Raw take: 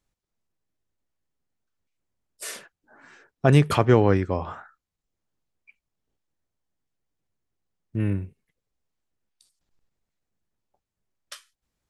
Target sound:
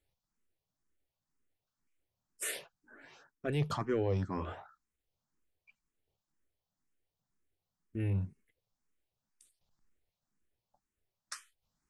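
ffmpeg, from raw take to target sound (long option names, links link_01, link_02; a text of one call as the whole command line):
ffmpeg -i in.wav -filter_complex "[0:a]areverse,acompressor=threshold=-26dB:ratio=4,areverse,asoftclip=type=tanh:threshold=-17dB,asplit=2[link_01][link_02];[link_02]afreqshift=2[link_03];[link_01][link_03]amix=inputs=2:normalize=1" out.wav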